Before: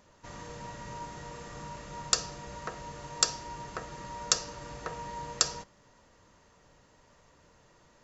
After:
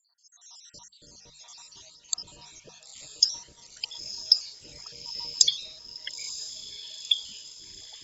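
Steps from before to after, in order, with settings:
time-frequency cells dropped at random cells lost 74%
high shelf with overshoot 3,200 Hz +13.5 dB, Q 3
mains-hum notches 50/100/150/200 Hz
in parallel at −10 dB: soft clipping −1 dBFS, distortion −10 dB
on the sum: rotating-speaker cabinet horn 1.1 Hz, later 6.7 Hz, at 0:03.48
on a send: feedback delay with all-pass diffusion 943 ms, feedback 56%, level −11.5 dB
on the sum: delay with pitch and tempo change per echo 644 ms, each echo −7 semitones, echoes 2, each echo −6 dB
level −8.5 dB

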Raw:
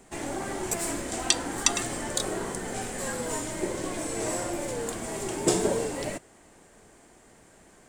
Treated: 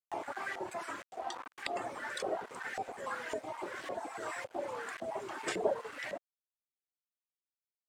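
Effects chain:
time-frequency cells dropped at random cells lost 22%
in parallel at +2 dB: downward compressor 4 to 1, threshold −42 dBFS, peak gain reduction 20.5 dB
on the sum: tuned comb filter 130 Hz, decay 0.63 s, harmonics all, mix 50%
hum removal 75 Hz, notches 24
0:01.02–0:01.76: tuned comb filter 350 Hz, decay 0.33 s, harmonics all, mix 50%
reverb reduction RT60 1.3 s
parametric band 92 Hz +6.5 dB 0.71 octaves
bit reduction 7 bits
auto-filter band-pass saw up 1.8 Hz 530–2,100 Hz
upward compression, threshold −53 dBFS
level +8 dB

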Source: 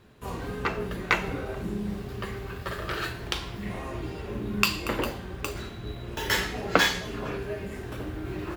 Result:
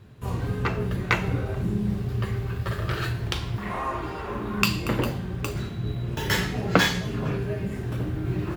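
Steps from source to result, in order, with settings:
parametric band 110 Hz +13.5 dB 1.3 octaves, from 0:03.58 1,100 Hz, from 0:04.62 140 Hz

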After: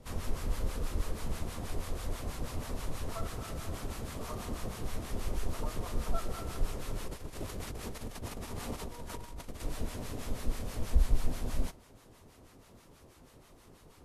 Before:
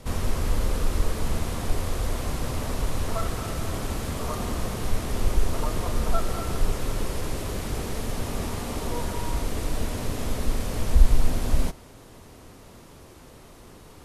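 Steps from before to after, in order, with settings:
0:07.07–0:09.62: compressor whose output falls as the input rises −31 dBFS, ratio −1
two-band tremolo in antiphase 6.2 Hz, depth 70%, crossover 830 Hz
level −6.5 dB

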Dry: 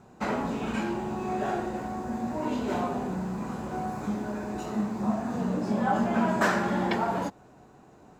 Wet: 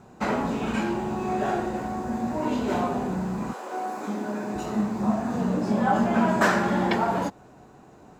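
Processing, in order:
0:03.52–0:04.54: high-pass filter 470 Hz → 130 Hz 24 dB per octave
level +3.5 dB

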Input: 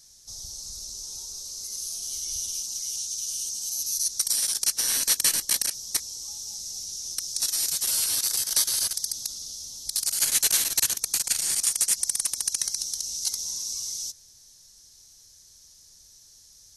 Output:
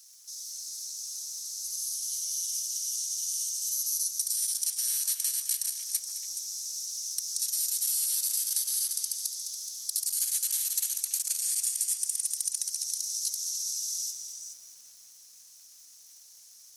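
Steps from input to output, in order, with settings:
surface crackle 480 per second −47 dBFS
downward compressor 20 to 1, threshold −26 dBFS, peak gain reduction 10 dB
first difference
echo through a band-pass that steps 141 ms, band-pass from 1,000 Hz, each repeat 1.4 octaves, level −2.5 dB
feedback echo at a low word length 212 ms, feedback 55%, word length 9 bits, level −11.5 dB

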